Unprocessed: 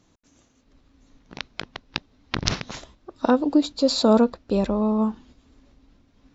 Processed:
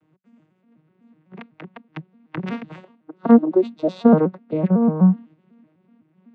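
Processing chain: vocoder on a broken chord minor triad, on D#3, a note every 125 ms; resonant high shelf 3.6 kHz -13 dB, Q 1.5; trim +4.5 dB

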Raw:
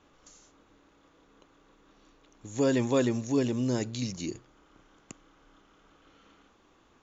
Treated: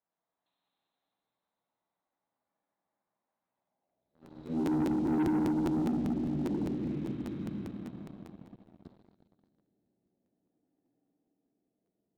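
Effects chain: de-hum 62.35 Hz, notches 7; pre-echo 199 ms -19 dB; reverberation RT60 2.8 s, pre-delay 19 ms, DRR -4 dB; band-pass sweep 1.9 kHz -> 600 Hz, 1.99–2.73 s; peaking EQ 2.2 kHz -9.5 dB 2.3 oct; speed mistake 78 rpm record played at 45 rpm; waveshaping leveller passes 3; crackling interface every 0.20 s, samples 512, repeat; trim -8.5 dB

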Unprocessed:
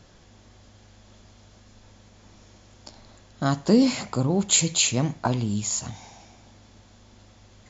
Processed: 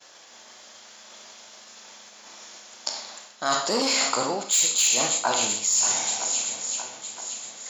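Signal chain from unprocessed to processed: treble shelf 6.1 kHz +9 dB; expander -46 dBFS; shuffle delay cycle 966 ms, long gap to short 1.5:1, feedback 35%, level -17.5 dB; Schroeder reverb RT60 0.68 s, combs from 26 ms, DRR 4.5 dB; in parallel at -9 dB: sine folder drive 10 dB, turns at -1 dBFS; on the sum: high-pass 700 Hz 12 dB/octave; reverse; compression 6:1, threshold -25 dBFS, peak gain reduction 17 dB; reverse; trim +4.5 dB

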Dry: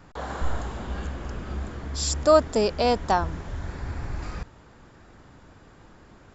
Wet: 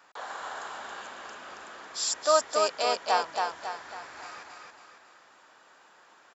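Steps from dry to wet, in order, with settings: high-pass 810 Hz 12 dB/octave; band-stop 2.1 kHz, Q 29; feedback delay 275 ms, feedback 44%, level -3.5 dB; trim -1 dB

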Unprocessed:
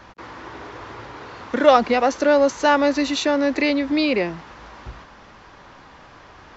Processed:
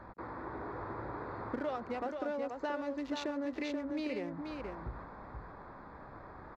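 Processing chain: local Wiener filter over 15 samples; treble shelf 4.6 kHz -9 dB; compression 8:1, threshold -32 dBFS, peak gain reduction 23 dB; on a send: delay 481 ms -5.5 dB; on the sum: trim -3.5 dB

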